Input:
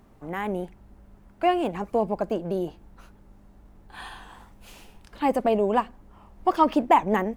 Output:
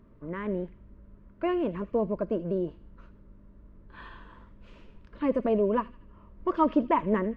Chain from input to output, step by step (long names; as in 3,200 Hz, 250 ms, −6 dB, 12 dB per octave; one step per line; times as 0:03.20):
Butterworth band-reject 780 Hz, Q 2.9
head-to-tape spacing loss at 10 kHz 37 dB
on a send: delay with a high-pass on its return 80 ms, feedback 49%, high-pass 2,600 Hz, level −12 dB